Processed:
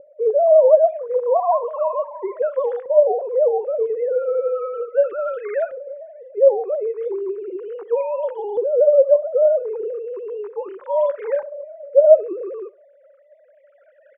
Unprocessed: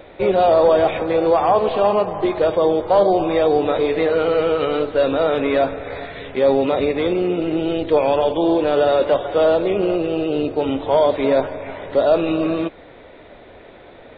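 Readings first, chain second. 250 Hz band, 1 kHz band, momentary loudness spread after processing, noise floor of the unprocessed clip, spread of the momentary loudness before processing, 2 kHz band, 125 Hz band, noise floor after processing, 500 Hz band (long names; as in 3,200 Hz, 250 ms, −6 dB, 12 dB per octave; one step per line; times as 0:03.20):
below −15 dB, −6.5 dB, 16 LU, −43 dBFS, 6 LU, below −10 dB, below −40 dB, −54 dBFS, −0.5 dB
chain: three sine waves on the formant tracks
auto-filter low-pass saw up 0.35 Hz 510–1,700 Hz
on a send: repeating echo 65 ms, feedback 22%, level −22 dB
on the sum: level −6.5 dB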